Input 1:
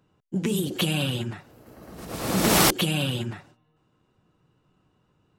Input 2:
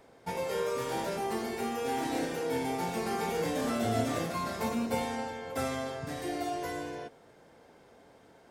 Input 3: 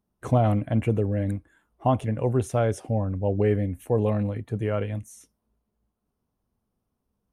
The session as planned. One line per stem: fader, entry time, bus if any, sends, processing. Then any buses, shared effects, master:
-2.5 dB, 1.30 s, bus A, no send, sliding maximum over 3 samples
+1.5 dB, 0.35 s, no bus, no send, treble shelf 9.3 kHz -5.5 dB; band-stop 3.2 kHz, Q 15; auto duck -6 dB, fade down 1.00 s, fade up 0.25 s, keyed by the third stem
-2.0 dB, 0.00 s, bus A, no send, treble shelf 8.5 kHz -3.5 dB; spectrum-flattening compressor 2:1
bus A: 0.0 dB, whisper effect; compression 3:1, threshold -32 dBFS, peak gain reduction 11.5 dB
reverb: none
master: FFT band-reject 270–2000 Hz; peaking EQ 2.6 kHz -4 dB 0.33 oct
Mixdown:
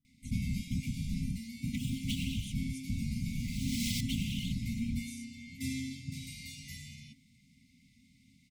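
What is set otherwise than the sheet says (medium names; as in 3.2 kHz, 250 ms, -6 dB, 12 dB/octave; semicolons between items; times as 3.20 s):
stem 2: entry 0.35 s -> 0.05 s; stem 3: missing spectrum-flattening compressor 2:1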